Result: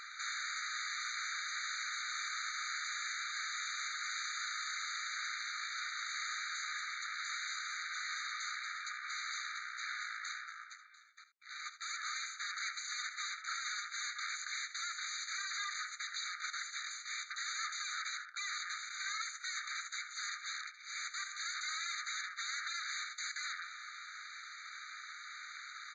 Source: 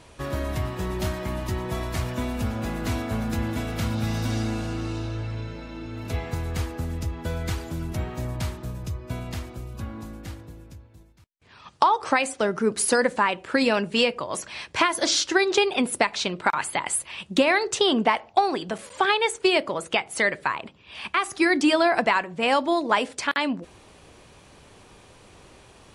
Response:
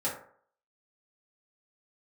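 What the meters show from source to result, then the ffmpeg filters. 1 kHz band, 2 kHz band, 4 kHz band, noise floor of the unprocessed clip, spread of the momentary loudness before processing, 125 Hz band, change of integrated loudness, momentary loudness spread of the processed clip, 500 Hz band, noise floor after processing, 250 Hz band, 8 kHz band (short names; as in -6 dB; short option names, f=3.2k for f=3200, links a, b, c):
-18.0 dB, -10.0 dB, -10.0 dB, -52 dBFS, 14 LU, under -40 dB, -14.5 dB, 8 LU, under -40 dB, -53 dBFS, under -40 dB, -8.0 dB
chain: -af "highshelf=f=5.2k:g=-10,acompressor=threshold=-29dB:ratio=2,alimiter=limit=-21dB:level=0:latency=1:release=289,aeval=exprs='0.015*(abs(mod(val(0)/0.015+3,4)-2)-1)':c=same,aeval=exprs='0.0158*(cos(1*acos(clip(val(0)/0.0158,-1,1)))-cos(1*PI/2))+0.00708*(cos(3*acos(clip(val(0)/0.0158,-1,1)))-cos(3*PI/2))+0.002*(cos(4*acos(clip(val(0)/0.0158,-1,1)))-cos(4*PI/2))+0.00282*(cos(8*acos(clip(val(0)/0.0158,-1,1)))-cos(8*PI/2))':c=same,asoftclip=type=tanh:threshold=-38dB,aresample=16000,aresample=44100,aecho=1:1:67|79:0.178|0.168,afftfilt=real='re*eq(mod(floor(b*sr/1024/1200),2),1)':imag='im*eq(mod(floor(b*sr/1024/1200),2),1)':win_size=1024:overlap=0.75,volume=11dB"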